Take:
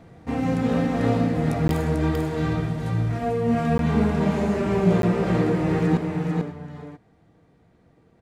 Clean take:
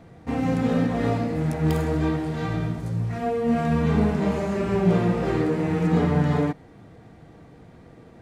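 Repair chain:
repair the gap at 0:01.68/0:03.78/0:05.02, 12 ms
echo removal 443 ms −4.5 dB
level correction +12 dB, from 0:05.97

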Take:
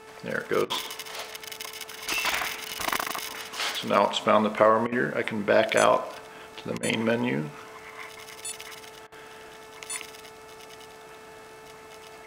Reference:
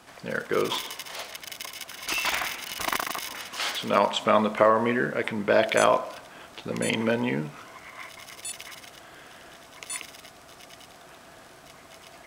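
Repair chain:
hum removal 438.1 Hz, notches 6
repair the gap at 0:00.65/0:04.87/0:06.78/0:09.07, 49 ms

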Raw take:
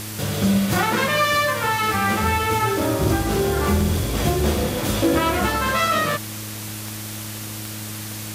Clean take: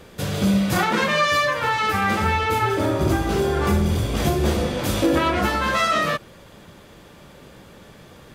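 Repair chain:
click removal
hum removal 106.5 Hz, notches 3
broadband denoise 14 dB, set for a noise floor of −32 dBFS

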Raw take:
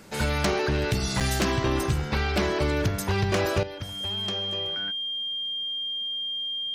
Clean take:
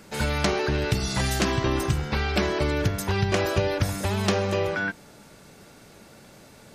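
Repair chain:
clipped peaks rebuilt −18 dBFS
notch filter 3,200 Hz, Q 30
repair the gap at 0:01.20, 6.8 ms
level correction +12 dB, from 0:03.63

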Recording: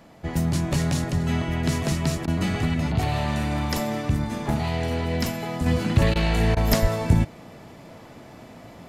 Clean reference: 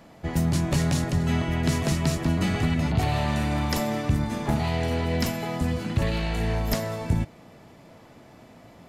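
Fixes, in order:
0:06.81–0:06.93: high-pass filter 140 Hz 24 dB per octave
repair the gap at 0:02.26/0:06.14/0:06.55, 15 ms
0:05.66: level correction −5.5 dB

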